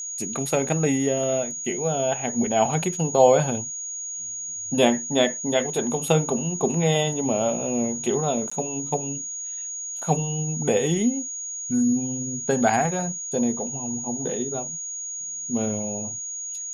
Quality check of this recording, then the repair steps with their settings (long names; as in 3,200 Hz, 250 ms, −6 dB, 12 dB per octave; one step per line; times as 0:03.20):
whistle 6,700 Hz −30 dBFS
0:08.50–0:08.52: drop-out 15 ms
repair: notch filter 6,700 Hz, Q 30
repair the gap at 0:08.50, 15 ms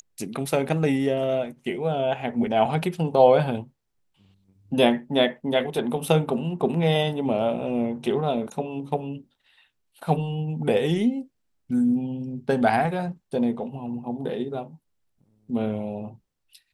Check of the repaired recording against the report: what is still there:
none of them is left